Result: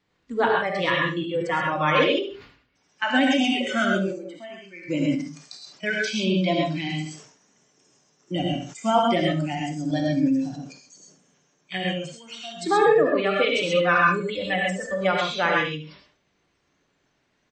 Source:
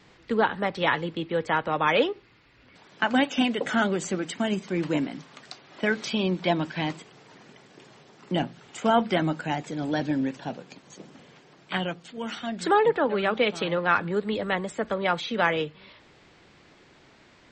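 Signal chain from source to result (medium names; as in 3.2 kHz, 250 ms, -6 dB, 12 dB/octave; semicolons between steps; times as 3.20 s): spectral noise reduction 18 dB; 3.97–4.87 s: band-pass filter 490 Hz -> 2.2 kHz, Q 2.1; 13.58–15.01 s: comb 4 ms, depth 78%; feedback delay 71 ms, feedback 17%, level -14 dB; gated-style reverb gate 150 ms rising, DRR -1 dB; decay stretcher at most 93 dB/s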